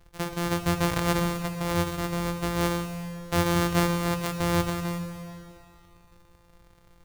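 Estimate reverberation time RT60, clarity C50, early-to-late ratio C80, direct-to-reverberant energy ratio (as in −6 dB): 2.7 s, 7.0 dB, 8.0 dB, 6.0 dB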